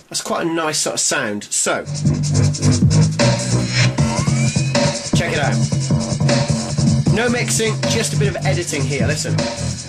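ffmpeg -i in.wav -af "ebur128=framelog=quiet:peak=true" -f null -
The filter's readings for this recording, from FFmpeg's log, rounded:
Integrated loudness:
  I:         -17.1 LUFS
  Threshold: -27.1 LUFS
Loudness range:
  LRA:         1.2 LU
  Threshold: -36.7 LUFS
  LRA low:   -17.3 LUFS
  LRA high:  -16.0 LUFS
True peak:
  Peak:       -1.6 dBFS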